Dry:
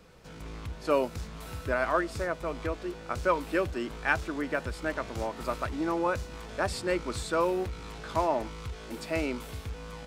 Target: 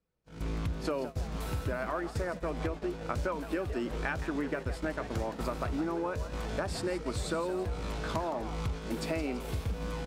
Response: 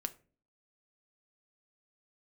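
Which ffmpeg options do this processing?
-filter_complex "[0:a]asplit=2[s0][s1];[s1]alimiter=limit=0.106:level=0:latency=1:release=73,volume=0.891[s2];[s0][s2]amix=inputs=2:normalize=0,lowshelf=f=450:g=6,acompressor=threshold=0.0447:ratio=12,asplit=6[s3][s4][s5][s6][s7][s8];[s4]adelay=167,afreqshift=110,volume=0.251[s9];[s5]adelay=334,afreqshift=220,volume=0.126[s10];[s6]adelay=501,afreqshift=330,volume=0.0631[s11];[s7]adelay=668,afreqshift=440,volume=0.0313[s12];[s8]adelay=835,afreqshift=550,volume=0.0157[s13];[s3][s9][s10][s11][s12][s13]amix=inputs=6:normalize=0,agate=range=0.0178:threshold=0.02:ratio=16:detection=peak,volume=0.75"

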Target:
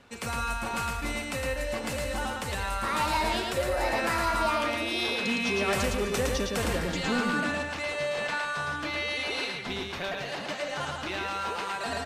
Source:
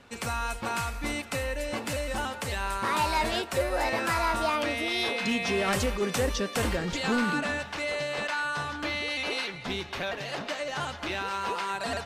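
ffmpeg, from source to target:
-af "aecho=1:1:110.8|256.6:0.708|0.251,volume=0.794"

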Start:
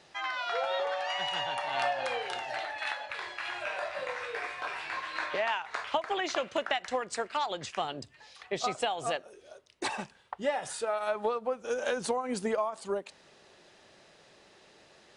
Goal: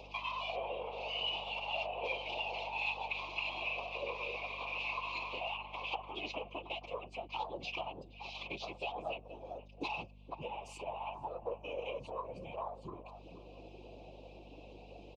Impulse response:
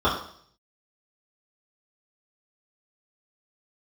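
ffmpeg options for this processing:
-filter_complex "[0:a]asplit=2[s0][s1];[s1]alimiter=level_in=1.12:limit=0.0631:level=0:latency=1,volume=0.891,volume=1.06[s2];[s0][s2]amix=inputs=2:normalize=0,acompressor=threshold=0.0126:ratio=10,equalizer=f=2600:t=o:w=0.31:g=9,afwtdn=0.00447,lowshelf=f=450:g=-10,asplit=2[s3][s4];[s4]adelay=474,lowpass=f=830:p=1,volume=0.299,asplit=2[s5][s6];[s6]adelay=474,lowpass=f=830:p=1,volume=0.27,asplit=2[s7][s8];[s8]adelay=474,lowpass=f=830:p=1,volume=0.27[s9];[s5][s7][s9]amix=inputs=3:normalize=0[s10];[s3][s10]amix=inputs=2:normalize=0,acompressor=mode=upward:threshold=0.00282:ratio=2.5,asuperstop=centerf=1600:order=12:qfactor=1.3,afftfilt=real='hypot(re,im)*cos(PI*b)':imag='0':win_size=1024:overlap=0.75,highpass=110,lowpass=3400,afftfilt=real='hypot(re,im)*cos(2*PI*random(0))':imag='hypot(re,im)*sin(2*PI*random(1))':win_size=512:overlap=0.75,aeval=exprs='val(0)+0.000355*(sin(2*PI*50*n/s)+sin(2*PI*2*50*n/s)/2+sin(2*PI*3*50*n/s)/3+sin(2*PI*4*50*n/s)/4+sin(2*PI*5*50*n/s)/5)':c=same,volume=4.73"

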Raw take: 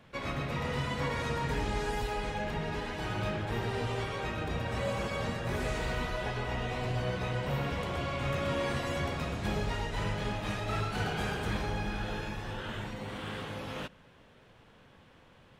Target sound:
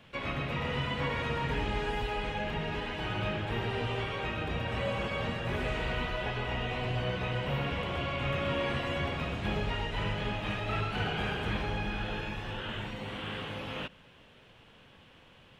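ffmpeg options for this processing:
-filter_complex "[0:a]acrossover=split=3300[s0][s1];[s1]acompressor=threshold=0.00126:ratio=4:attack=1:release=60[s2];[s0][s2]amix=inputs=2:normalize=0,equalizer=f=2900:t=o:w=0.69:g=8"

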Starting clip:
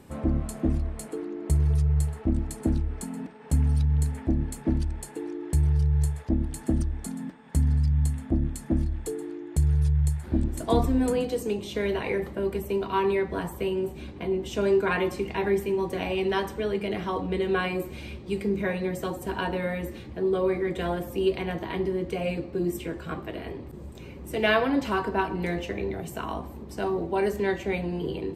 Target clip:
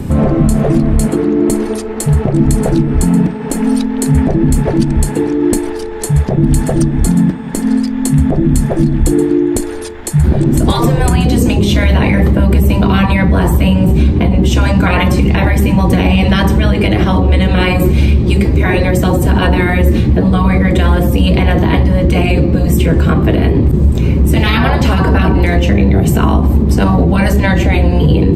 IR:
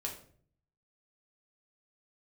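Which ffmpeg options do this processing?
-filter_complex "[0:a]afftfilt=real='re*lt(hypot(re,im),0.178)':imag='im*lt(hypot(re,im),0.178)':win_size=1024:overlap=0.75,lowshelf=f=230:g=8.5,acrossover=split=320|870[s0][s1][s2];[s0]acontrast=80[s3];[s3][s1][s2]amix=inputs=3:normalize=0,alimiter=level_in=11.2:limit=0.891:release=50:level=0:latency=1,volume=0.891"

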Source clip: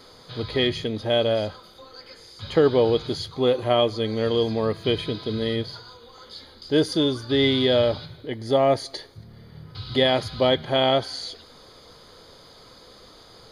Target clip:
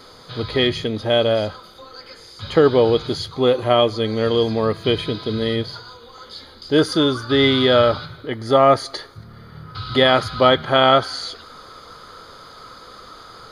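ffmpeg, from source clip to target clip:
-af "asetnsamples=n=441:p=0,asendcmd='6.79 equalizer g 14',equalizer=f=1300:t=o:w=0.52:g=4.5,volume=1.58"

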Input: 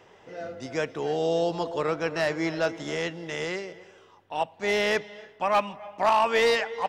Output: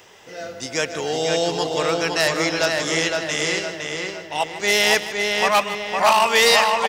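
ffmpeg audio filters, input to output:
-filter_complex "[0:a]asplit=2[s0][s1];[s1]aecho=0:1:154:0.2[s2];[s0][s2]amix=inputs=2:normalize=0,crystalizer=i=6:c=0,asplit=2[s3][s4];[s4]adelay=511,lowpass=f=4000:p=1,volume=0.708,asplit=2[s5][s6];[s6]adelay=511,lowpass=f=4000:p=1,volume=0.47,asplit=2[s7][s8];[s8]adelay=511,lowpass=f=4000:p=1,volume=0.47,asplit=2[s9][s10];[s10]adelay=511,lowpass=f=4000:p=1,volume=0.47,asplit=2[s11][s12];[s12]adelay=511,lowpass=f=4000:p=1,volume=0.47,asplit=2[s13][s14];[s14]adelay=511,lowpass=f=4000:p=1,volume=0.47[s15];[s5][s7][s9][s11][s13][s15]amix=inputs=6:normalize=0[s16];[s3][s16]amix=inputs=2:normalize=0,volume=1.26"

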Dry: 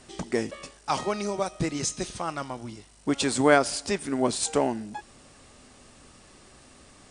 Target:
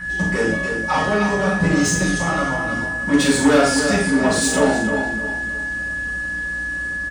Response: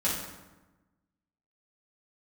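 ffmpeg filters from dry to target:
-filter_complex "[0:a]asettb=1/sr,asplit=3[s0][s1][s2];[s0]atrim=end=0.394[s3];[s1]atrim=start=0.39:end=1.69,asetpts=PTS-STARTPTS,afade=t=in:d=0.004:c=qsin,afade=t=out:st=1.296:d=0.004:c=qsin,acrossover=split=3400[s4][s5];[s5]acompressor=threshold=0.00631:ratio=4:attack=1:release=60[s6];[s4][s6]amix=inputs=2:normalize=0[s7];[s2]atrim=start=1.686[s8];[s3][s7]acrossfade=d=0.004:c1=hsin:c2=qsin[s9];[s9][s8]acrossfade=d=0.004:c1=qsin:c2=hsin,lowshelf=f=140:g=8,acrossover=split=290[s10][s11];[s11]dynaudnorm=f=210:g=3:m=1.41[s12];[s10][s12]amix=inputs=2:normalize=0,aeval=exprs='val(0)+0.0316*sin(2*PI*1700*n/s)':c=same,asoftclip=type=tanh:threshold=0.126,aeval=exprs='val(0)+0.01*(sin(2*PI*60*n/s)+sin(2*PI*2*60*n/s)/2+sin(2*PI*3*60*n/s)/3+sin(2*PI*4*60*n/s)/4+sin(2*PI*5*60*n/s)/5)':c=same,asplit=2[s13][s14];[s14]adelay=41,volume=0.316[s15];[s13][s15]amix=inputs=2:normalize=0,asplit=2[s16][s17];[s17]adelay=309,lowpass=f=3400:p=1,volume=0.447,asplit=2[s18][s19];[s19]adelay=309,lowpass=f=3400:p=1,volume=0.35,asplit=2[s20][s21];[s21]adelay=309,lowpass=f=3400:p=1,volume=0.35,asplit=2[s22][s23];[s23]adelay=309,lowpass=f=3400:p=1,volume=0.35[s24];[s16][s18][s20][s22][s24]amix=inputs=5:normalize=0[s25];[1:a]atrim=start_sample=2205,afade=t=out:st=0.19:d=0.01,atrim=end_sample=8820[s26];[s25][s26]afir=irnorm=-1:irlink=0,volume=0.841"

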